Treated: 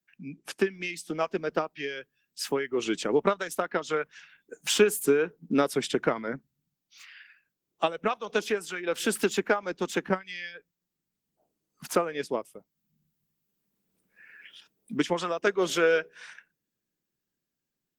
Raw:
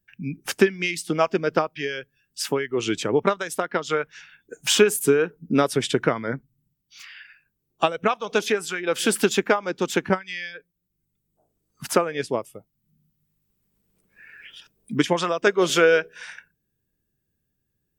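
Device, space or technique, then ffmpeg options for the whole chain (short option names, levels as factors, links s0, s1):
video call: -af "highpass=f=160:w=0.5412,highpass=f=160:w=1.3066,dynaudnorm=f=640:g=5:m=4.47,volume=0.376" -ar 48000 -c:a libopus -b:a 16k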